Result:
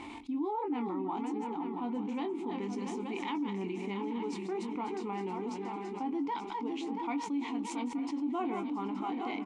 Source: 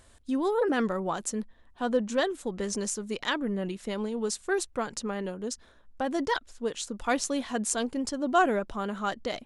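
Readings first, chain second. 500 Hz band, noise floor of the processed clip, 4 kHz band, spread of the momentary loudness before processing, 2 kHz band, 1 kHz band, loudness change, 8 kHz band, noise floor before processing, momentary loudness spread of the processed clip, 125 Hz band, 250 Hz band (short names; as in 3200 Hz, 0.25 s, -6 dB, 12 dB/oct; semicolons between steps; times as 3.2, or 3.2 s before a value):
-9.0 dB, -41 dBFS, -11.5 dB, 8 LU, -12.5 dB, -4.5 dB, -6.0 dB, -19.5 dB, -57 dBFS, 3 LU, n/a, -2.0 dB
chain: regenerating reverse delay 0.339 s, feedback 58%, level -9 dB; low shelf 380 Hz -8 dB; harmonic-percussive split harmonic +4 dB; vowel filter u; high shelf 5800 Hz -7 dB; doubler 21 ms -8 dB; echo 0.876 s -13.5 dB; fast leveller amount 70%; gain -2.5 dB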